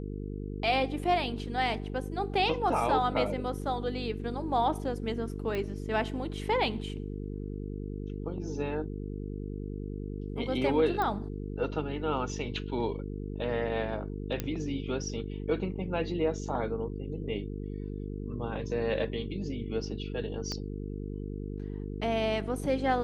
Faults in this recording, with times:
buzz 50 Hz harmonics 9 -37 dBFS
5.55 pop -22 dBFS
11.02 pop -19 dBFS
14.4 pop -16 dBFS
20.52 pop -21 dBFS

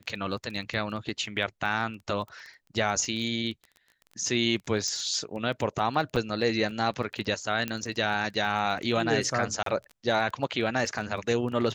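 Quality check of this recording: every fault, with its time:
crackle 18/s -35 dBFS
0.54 gap 2.1 ms
4.88 pop -19 dBFS
6.16–6.17 gap 5.3 ms
7.68 pop -15 dBFS
9.63–9.66 gap 33 ms

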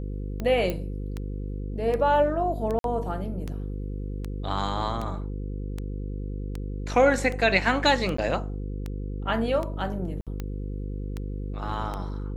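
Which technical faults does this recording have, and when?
buzz 50 Hz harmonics 10 -32 dBFS
tick 78 rpm -19 dBFS
0.7 pop -15 dBFS
2.79–2.84 gap 52 ms
8.17–8.18 gap 14 ms
10.21–10.27 gap 57 ms

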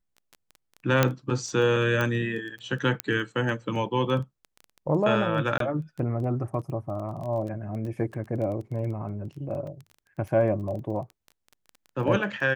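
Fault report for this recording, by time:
crackle 11/s -34 dBFS
1.03 pop -5 dBFS
2.01 pop -14 dBFS
3 pop -9 dBFS
5.58–5.6 gap 23 ms
9.67 gap 3.3 ms

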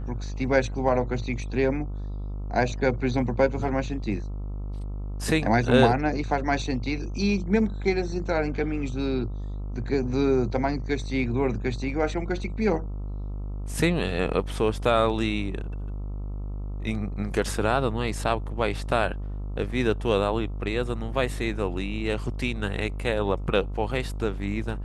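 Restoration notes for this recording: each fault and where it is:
buzz 50 Hz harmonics 27 -32 dBFS

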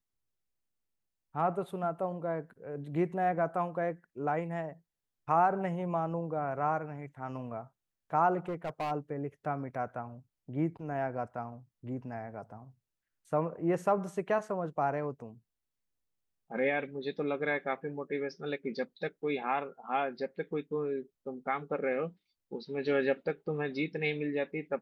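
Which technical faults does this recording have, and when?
8.48–8.92 clipped -30.5 dBFS

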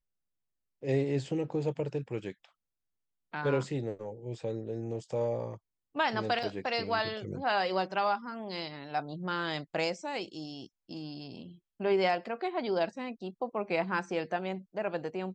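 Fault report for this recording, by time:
6.43 gap 3.6 ms

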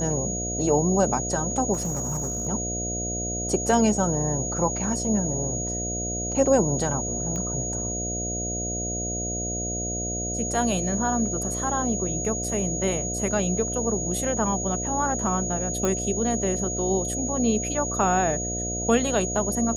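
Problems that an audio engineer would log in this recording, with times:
buzz 60 Hz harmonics 12 -32 dBFS
tone 6700 Hz -29 dBFS
1.73–2.47 clipped -23.5 dBFS
7.36 pop -20 dBFS
12.44 gap 4 ms
15.85 pop -12 dBFS

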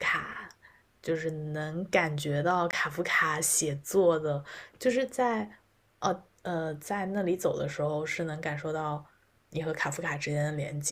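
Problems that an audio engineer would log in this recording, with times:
2.71–2.73 gap 19 ms

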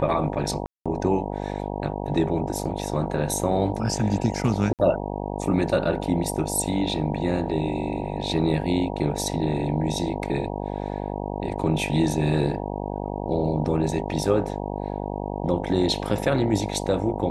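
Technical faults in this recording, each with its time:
buzz 50 Hz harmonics 19 -30 dBFS
0.66–0.86 gap 0.196 s
4.73–4.79 gap 58 ms

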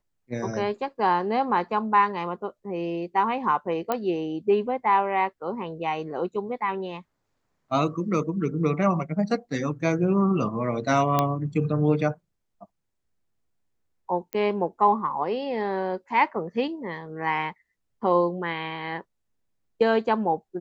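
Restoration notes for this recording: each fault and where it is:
3.92 pop -12 dBFS
11.19 pop -8 dBFS
14.33 pop -15 dBFS

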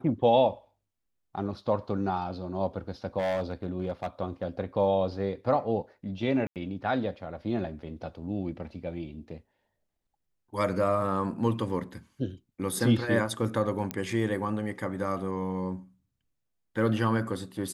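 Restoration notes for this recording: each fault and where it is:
3.18–4.06 clipped -25 dBFS
6.47–6.56 gap 88 ms
13.91 pop -15 dBFS

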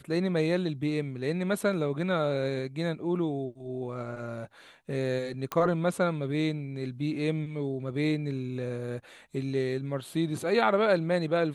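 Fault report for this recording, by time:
5.52 pop -15 dBFS

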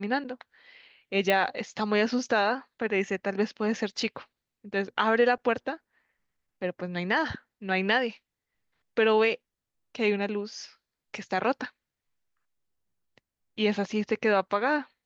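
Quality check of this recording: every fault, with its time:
1.3 pop -11 dBFS

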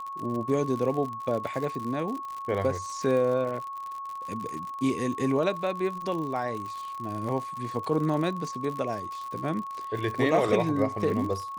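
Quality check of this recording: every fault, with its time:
crackle 74/s -33 dBFS
tone 1100 Hz -34 dBFS

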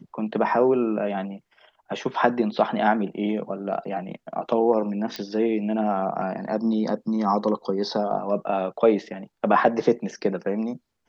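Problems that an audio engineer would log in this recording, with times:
5.16 pop -16 dBFS

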